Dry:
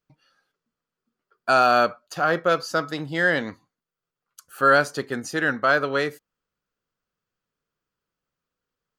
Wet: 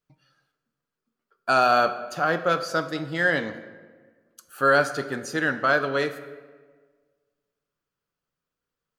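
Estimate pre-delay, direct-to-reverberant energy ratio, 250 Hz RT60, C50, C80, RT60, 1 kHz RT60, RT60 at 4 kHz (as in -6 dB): 7 ms, 8.5 dB, 1.7 s, 12.0 dB, 13.5 dB, 1.5 s, 1.4 s, 0.90 s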